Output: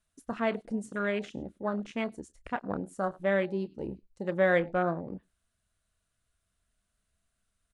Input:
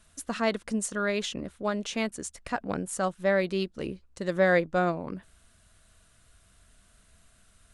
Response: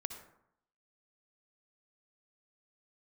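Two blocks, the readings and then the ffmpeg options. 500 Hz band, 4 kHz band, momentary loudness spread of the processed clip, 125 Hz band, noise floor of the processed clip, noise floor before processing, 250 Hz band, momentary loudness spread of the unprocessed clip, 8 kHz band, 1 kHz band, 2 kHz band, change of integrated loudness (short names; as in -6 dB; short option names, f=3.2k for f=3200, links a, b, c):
-2.0 dB, -10.5 dB, 15 LU, -2.5 dB, -81 dBFS, -62 dBFS, -2.5 dB, 13 LU, under -15 dB, -2.5 dB, -3.0 dB, -2.5 dB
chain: -filter_complex "[0:a]asplit=2[a][b];[b]adelay=30,volume=-13dB[c];[a][c]amix=inputs=2:normalize=0,asplit=2[d][e];[e]aecho=0:1:102:0.106[f];[d][f]amix=inputs=2:normalize=0,afwtdn=0.02,volume=-2.5dB"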